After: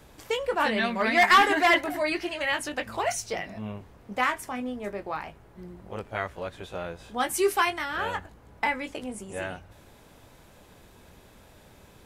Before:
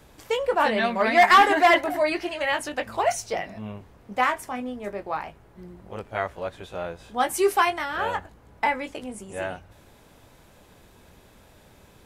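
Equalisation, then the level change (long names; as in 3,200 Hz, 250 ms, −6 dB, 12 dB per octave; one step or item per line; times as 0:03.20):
dynamic equaliser 690 Hz, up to −6 dB, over −34 dBFS, Q 0.95
0.0 dB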